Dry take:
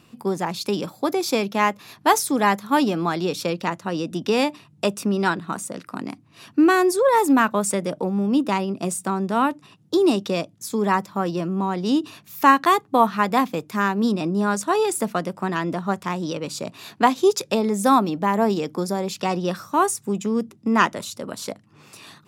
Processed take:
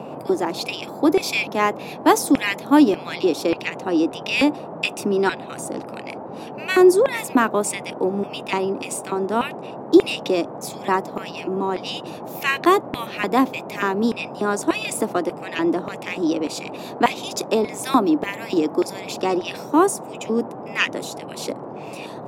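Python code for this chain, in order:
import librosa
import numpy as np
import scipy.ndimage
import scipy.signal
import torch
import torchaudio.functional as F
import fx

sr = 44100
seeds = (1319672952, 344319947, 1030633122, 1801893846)

y = fx.filter_lfo_highpass(x, sr, shape='square', hz=1.7, low_hz=310.0, high_hz=2400.0, q=3.5)
y = fx.dmg_noise_band(y, sr, seeds[0], low_hz=130.0, high_hz=860.0, level_db=-33.0)
y = y * librosa.db_to_amplitude(-1.0)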